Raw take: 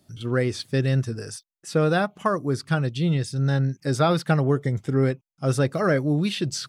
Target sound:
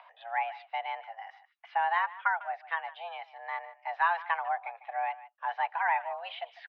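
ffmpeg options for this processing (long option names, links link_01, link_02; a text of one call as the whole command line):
ffmpeg -i in.wav -filter_complex "[0:a]asplit=2[link_01][link_02];[link_02]adelay=150,highpass=300,lowpass=3400,asoftclip=type=hard:threshold=-17dB,volume=-16dB[link_03];[link_01][link_03]amix=inputs=2:normalize=0,acompressor=mode=upward:threshold=-28dB:ratio=2.5,highpass=frequency=410:width_type=q:width=0.5412,highpass=frequency=410:width_type=q:width=1.307,lowpass=frequency=2600:width_type=q:width=0.5176,lowpass=frequency=2600:width_type=q:width=0.7071,lowpass=frequency=2600:width_type=q:width=1.932,afreqshift=340,volume=-4.5dB" out.wav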